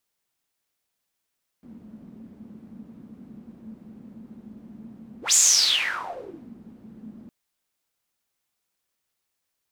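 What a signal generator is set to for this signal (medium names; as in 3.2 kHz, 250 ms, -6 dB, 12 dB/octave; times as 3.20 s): whoosh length 5.66 s, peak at 3.71 s, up 0.14 s, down 1.26 s, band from 220 Hz, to 7.1 kHz, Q 9.3, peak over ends 28 dB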